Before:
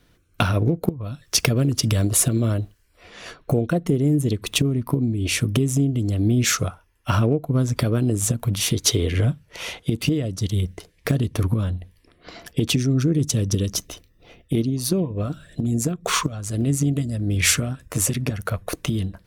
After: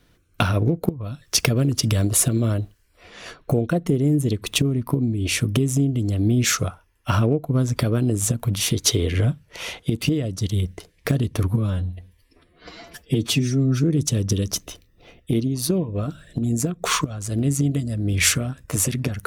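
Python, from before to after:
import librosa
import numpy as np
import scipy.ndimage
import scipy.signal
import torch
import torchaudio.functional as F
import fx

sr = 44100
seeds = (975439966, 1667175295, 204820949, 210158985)

y = fx.edit(x, sr, fx.stretch_span(start_s=11.5, length_s=1.56, factor=1.5), tone=tone)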